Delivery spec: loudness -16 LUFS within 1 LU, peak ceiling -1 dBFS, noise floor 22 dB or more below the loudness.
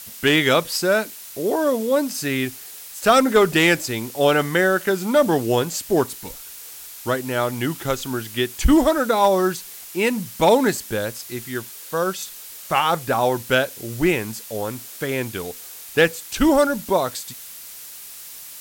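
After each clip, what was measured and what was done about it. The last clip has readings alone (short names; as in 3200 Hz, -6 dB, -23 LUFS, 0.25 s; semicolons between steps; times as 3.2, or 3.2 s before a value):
noise floor -39 dBFS; noise floor target -43 dBFS; loudness -20.5 LUFS; peak -4.5 dBFS; loudness target -16.0 LUFS
-> denoiser 6 dB, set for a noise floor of -39 dBFS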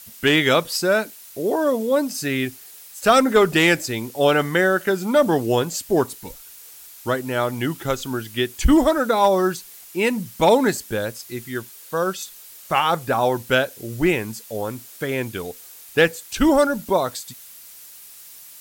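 noise floor -43 dBFS; loudness -20.5 LUFS; peak -4.5 dBFS; loudness target -16.0 LUFS
-> gain +4.5 dB; limiter -1 dBFS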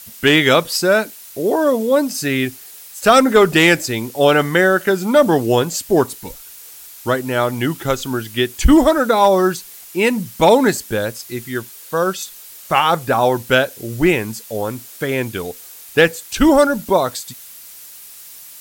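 loudness -16.0 LUFS; peak -1.0 dBFS; noise floor -39 dBFS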